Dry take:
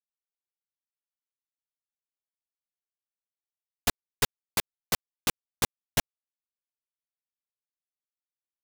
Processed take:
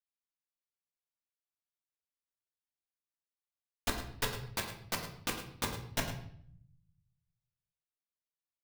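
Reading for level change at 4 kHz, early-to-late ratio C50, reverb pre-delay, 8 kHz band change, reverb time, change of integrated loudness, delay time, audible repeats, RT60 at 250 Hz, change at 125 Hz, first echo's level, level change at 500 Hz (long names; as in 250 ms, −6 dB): −6.5 dB, 6.5 dB, 3 ms, −8.5 dB, 0.60 s, −7.0 dB, 106 ms, 1, 1.2 s, −2.0 dB, −12.0 dB, −4.5 dB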